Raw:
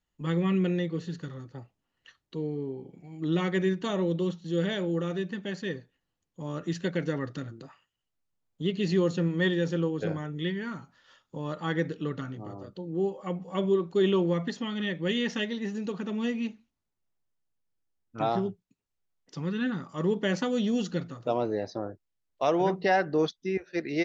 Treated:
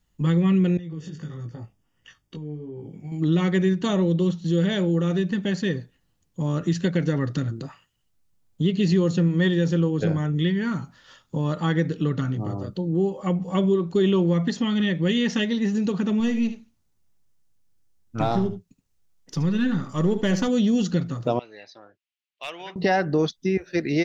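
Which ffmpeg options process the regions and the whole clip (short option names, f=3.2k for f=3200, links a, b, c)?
-filter_complex "[0:a]asettb=1/sr,asplit=3[a][b][c];[a]atrim=end=0.774[d];[b]atrim=start=0.77:end=3.12,asetpts=PTS-STARTPTS,afade=t=in:d=0.004:c=qsin,afade=t=out:st=2.346:d=0.004:c=qsin,acompressor=threshold=-39dB:ratio=16:attack=3.2:release=140:knee=1:detection=peak,asuperstop=centerf=4100:order=8:qfactor=6.9,flanger=delay=17.5:depth=3:speed=1.5[e];[c]atrim=start=3.116[f];[d][e]acrossfade=d=0.004:c1=hsin:c2=qsin[g];[g][f]acrossfade=d=0.004:c1=qsin:c2=hsin,asettb=1/sr,asplit=3[h][i][j];[h]atrim=end=16.204[k];[i]atrim=start=16.2:end=20.48,asetpts=PTS-STARTPTS,afade=t=in:d=0.004:c=qsin,afade=t=out:st=4.276:d=0.004:c=qsin,aeval=exprs='if(lt(val(0),0),0.708*val(0),val(0))':c=same,equalizer=f=6.1k:t=o:w=0.44:g=2.5,aecho=1:1:74:0.251,atrim=end_sample=188748[l];[j]atrim=start=20.476[m];[k][l]acrossfade=d=0.004:c1=hsin:c2=qsin[n];[n][m]acrossfade=d=0.004:c1=qsin:c2=hsin,asettb=1/sr,asplit=3[o][p][q];[o]atrim=end=21.394[r];[p]atrim=start=21.39:end=22.76,asetpts=PTS-STARTPTS,afade=t=in:d=0.004:c=qsin,afade=t=out:st=1.366:d=0.004:c=qsin,bandpass=f=2.7k:t=q:w=2.8,aeval=exprs='clip(val(0),-1,0.0266)':c=same[s];[q]atrim=start=22.756[t];[r][s]acrossfade=d=0.004:c1=hsin:c2=qsin[u];[u][t]acrossfade=d=0.004:c1=qsin:c2=hsin,bass=f=250:g=8,treble=f=4k:g=4,acompressor=threshold=-29dB:ratio=2,volume=7.5dB"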